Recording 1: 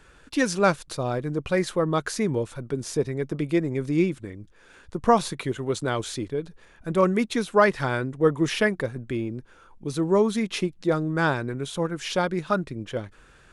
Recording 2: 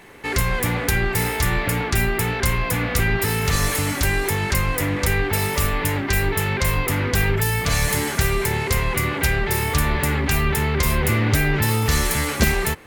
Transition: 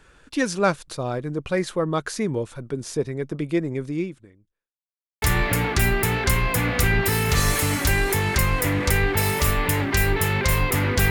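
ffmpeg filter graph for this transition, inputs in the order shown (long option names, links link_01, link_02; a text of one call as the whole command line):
ffmpeg -i cue0.wav -i cue1.wav -filter_complex "[0:a]apad=whole_dur=11.1,atrim=end=11.1,asplit=2[link_01][link_02];[link_01]atrim=end=4.74,asetpts=PTS-STARTPTS,afade=type=out:start_time=3.76:duration=0.98:curve=qua[link_03];[link_02]atrim=start=4.74:end=5.22,asetpts=PTS-STARTPTS,volume=0[link_04];[1:a]atrim=start=1.38:end=7.26,asetpts=PTS-STARTPTS,afade=type=in:duration=0.004:curve=hsin[link_05];[link_03][link_04][link_05]concat=n=3:v=0:a=1" out.wav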